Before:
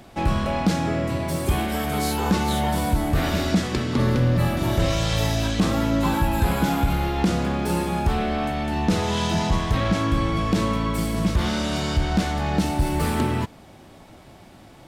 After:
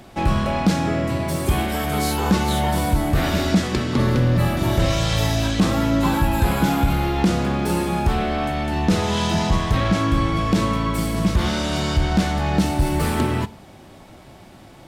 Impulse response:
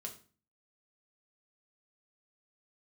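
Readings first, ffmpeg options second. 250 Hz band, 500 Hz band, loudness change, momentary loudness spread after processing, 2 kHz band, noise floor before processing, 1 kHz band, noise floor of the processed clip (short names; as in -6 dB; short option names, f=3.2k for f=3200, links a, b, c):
+2.5 dB, +2.0 dB, +2.5 dB, 3 LU, +2.5 dB, -47 dBFS, +2.0 dB, -44 dBFS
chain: -filter_complex "[0:a]asplit=2[a][b];[1:a]atrim=start_sample=2205,asetrate=38367,aresample=44100[c];[b][c]afir=irnorm=-1:irlink=0,volume=-10.5dB[d];[a][d]amix=inputs=2:normalize=0,volume=1dB"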